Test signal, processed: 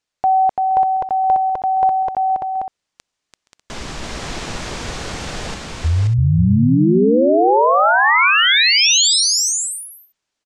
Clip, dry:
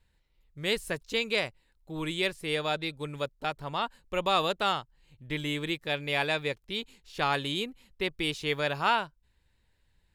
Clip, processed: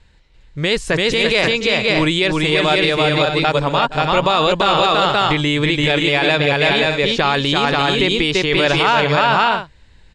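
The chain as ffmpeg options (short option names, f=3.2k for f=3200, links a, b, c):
-af "lowpass=f=7.5k:w=0.5412,lowpass=f=7.5k:w=1.3066,aecho=1:1:338|472|532|596:0.668|0.126|0.596|0.224,alimiter=level_in=22dB:limit=-1dB:release=50:level=0:latency=1,volume=-4dB"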